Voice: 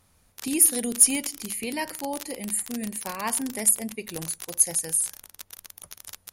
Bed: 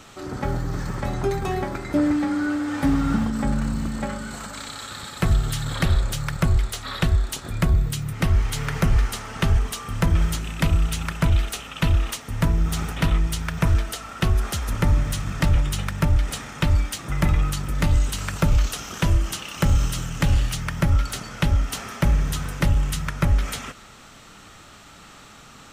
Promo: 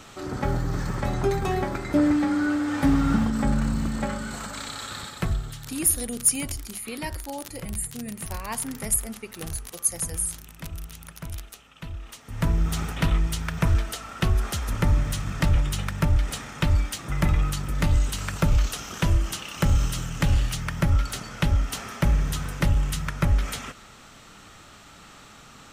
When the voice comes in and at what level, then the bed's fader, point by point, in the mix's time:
5.25 s, -3.5 dB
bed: 4.99 s 0 dB
5.78 s -17 dB
12.00 s -17 dB
12.49 s -2 dB

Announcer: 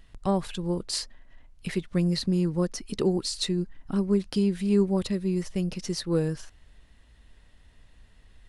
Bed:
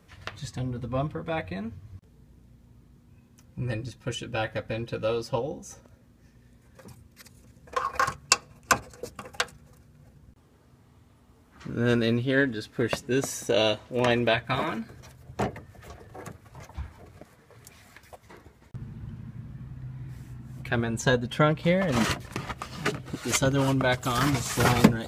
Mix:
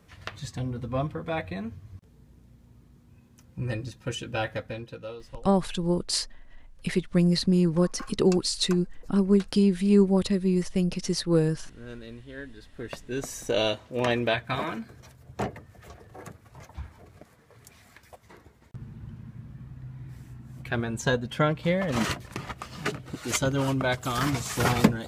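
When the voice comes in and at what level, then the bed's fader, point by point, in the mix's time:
5.20 s, +3.0 dB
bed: 4.53 s 0 dB
5.44 s -18.5 dB
12.33 s -18.5 dB
13.46 s -2 dB

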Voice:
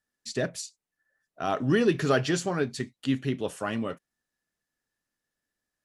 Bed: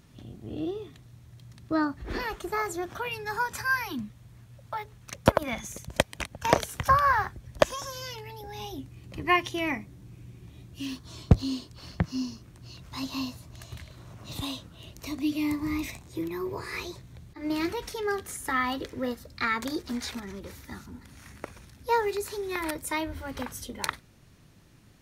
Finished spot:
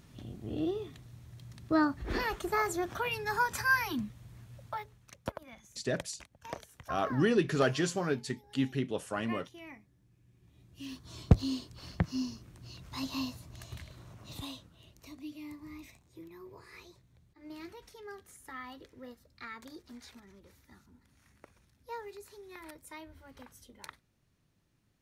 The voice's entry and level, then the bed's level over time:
5.50 s, -4.0 dB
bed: 4.61 s -0.5 dB
5.37 s -19.5 dB
10.22 s -19.5 dB
11.19 s -3 dB
13.88 s -3 dB
15.40 s -17 dB

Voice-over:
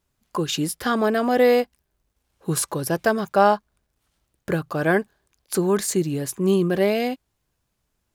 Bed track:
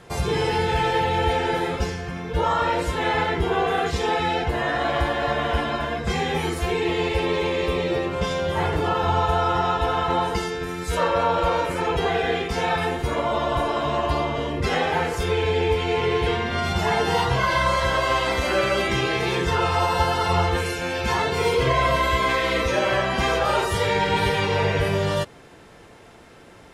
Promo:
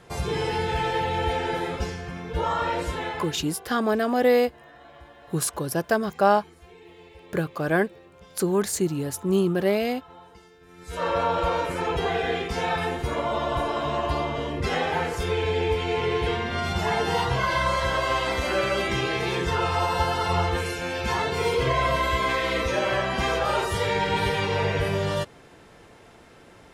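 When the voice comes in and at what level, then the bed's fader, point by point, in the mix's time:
2.85 s, -2.5 dB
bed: 2.94 s -4 dB
3.64 s -25.5 dB
10.60 s -25.5 dB
11.09 s -3 dB

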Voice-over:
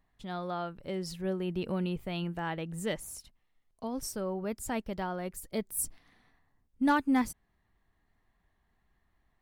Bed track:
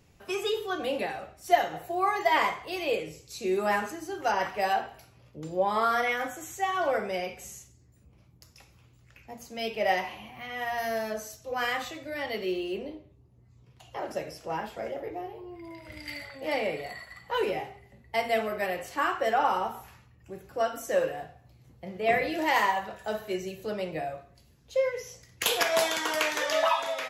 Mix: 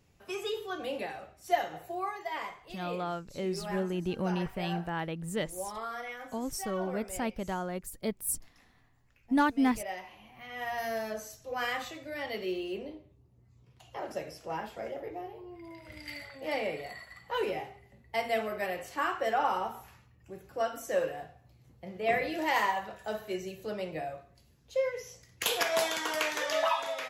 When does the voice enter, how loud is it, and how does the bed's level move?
2.50 s, +0.5 dB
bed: 1.94 s -5.5 dB
2.20 s -13 dB
10.03 s -13 dB
10.66 s -3.5 dB

